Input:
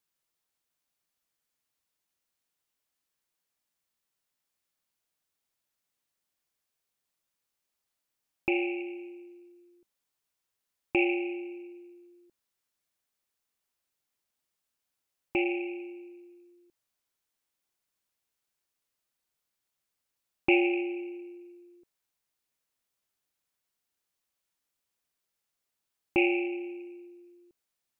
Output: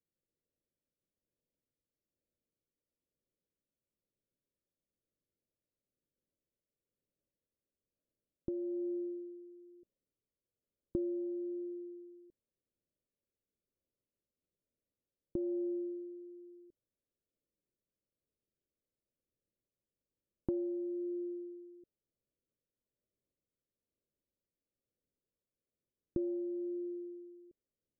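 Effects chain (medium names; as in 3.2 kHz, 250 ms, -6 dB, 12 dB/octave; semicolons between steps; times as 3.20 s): steep low-pass 610 Hz 72 dB/octave; compression 6:1, threshold -38 dBFS, peak gain reduction 15 dB; rotary cabinet horn 1.2 Hz; trim +4.5 dB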